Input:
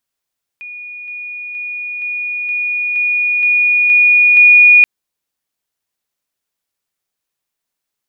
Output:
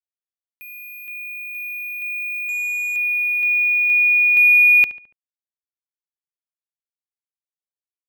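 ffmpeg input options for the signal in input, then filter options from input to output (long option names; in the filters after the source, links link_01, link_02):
-f lavfi -i "aevalsrc='pow(10,(-27+3*floor(t/0.47))/20)*sin(2*PI*2450*t)':duration=4.23:sample_rate=44100"
-filter_complex "[0:a]acrusher=bits=5:mix=0:aa=0.000001,equalizer=frequency=1900:width=0.46:gain=-7.5,asplit=2[link_01][link_02];[link_02]adelay=71,lowpass=frequency=2600:poles=1,volume=-16dB,asplit=2[link_03][link_04];[link_04]adelay=71,lowpass=frequency=2600:poles=1,volume=0.5,asplit=2[link_05][link_06];[link_06]adelay=71,lowpass=frequency=2600:poles=1,volume=0.5,asplit=2[link_07][link_08];[link_08]adelay=71,lowpass=frequency=2600:poles=1,volume=0.5[link_09];[link_01][link_03][link_05][link_07][link_09]amix=inputs=5:normalize=0"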